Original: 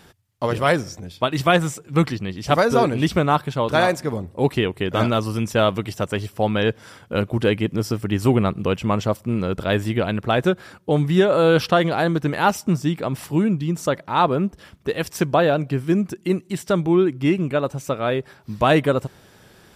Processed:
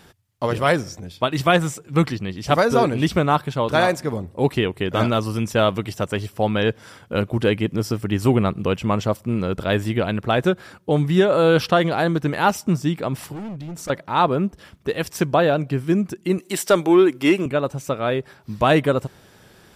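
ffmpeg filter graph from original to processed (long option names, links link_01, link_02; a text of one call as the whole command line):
ffmpeg -i in.wav -filter_complex "[0:a]asettb=1/sr,asplit=3[link_01][link_02][link_03];[link_01]atrim=end=13.324[link_04];[link_02]atrim=start=13.32:end=13.9,asetpts=PTS-STARTPTS,afade=type=in:duration=0.004:curve=qsin,afade=type=out:start_time=0.576:duration=0.004:curve=qsin,asubboost=boost=12:cutoff=63,asoftclip=type=hard:threshold=-23.5dB,acompressor=threshold=-31dB:ratio=5:attack=3.2:release=140:knee=1:detection=peak[link_05];[link_03]atrim=start=13.896[link_06];[link_04][link_05]acrossfade=duration=0.004:curve1=hsin:curve2=qsin[link_07];[link_07][link_06]acrossfade=duration=0.004:curve1=qsin:curve2=hsin,asettb=1/sr,asplit=3[link_08][link_09][link_10];[link_08]atrim=end=16.384[link_11];[link_09]atrim=start=16.38:end=17.46,asetpts=PTS-STARTPTS,afade=type=in:duration=0.004:curve=qsin,afade=type=out:start_time=1.076:duration=0.004:curve=qsin,highpass=350,highshelf=frequency=7900:gain=7,acontrast=70[link_12];[link_10]atrim=start=17.456[link_13];[link_11][link_12]acrossfade=duration=0.004:curve1=hsin:curve2=qsin[link_14];[link_14][link_13]acrossfade=duration=0.004:curve1=qsin:curve2=hsin" out.wav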